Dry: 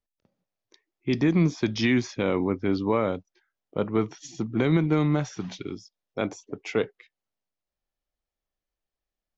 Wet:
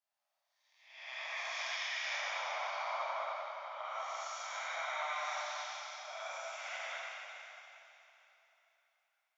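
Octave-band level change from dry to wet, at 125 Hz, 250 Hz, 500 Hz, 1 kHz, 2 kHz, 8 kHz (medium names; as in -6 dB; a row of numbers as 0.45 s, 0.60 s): under -40 dB, under -40 dB, -17.5 dB, -2.5 dB, -3.5 dB, no reading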